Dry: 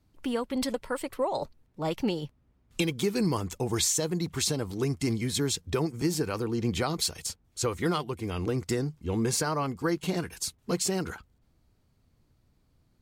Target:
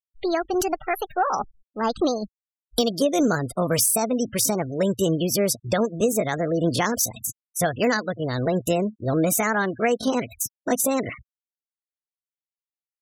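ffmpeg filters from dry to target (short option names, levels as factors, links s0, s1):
-af "asetrate=62367,aresample=44100,atempo=0.707107,afftfilt=real='re*gte(hypot(re,im),0.0112)':imag='im*gte(hypot(re,im),0.0112)':win_size=1024:overlap=0.75,volume=2.11"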